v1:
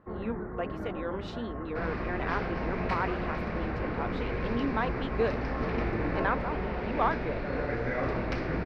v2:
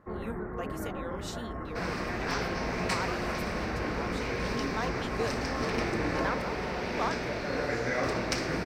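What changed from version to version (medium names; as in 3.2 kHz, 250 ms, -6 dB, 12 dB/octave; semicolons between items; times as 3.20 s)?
speech -6.5 dB; second sound: add high-pass 110 Hz 6 dB/octave; master: remove distance through air 350 m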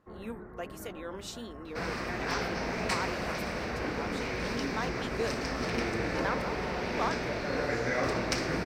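first sound -9.5 dB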